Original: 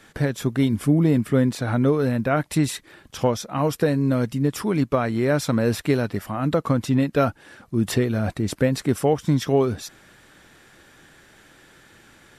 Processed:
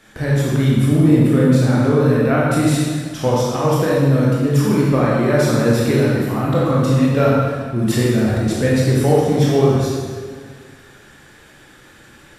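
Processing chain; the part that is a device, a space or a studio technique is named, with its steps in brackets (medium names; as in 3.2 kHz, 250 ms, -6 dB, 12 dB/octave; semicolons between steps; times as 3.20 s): stairwell (reverberation RT60 1.8 s, pre-delay 18 ms, DRR -6 dB); trim -1 dB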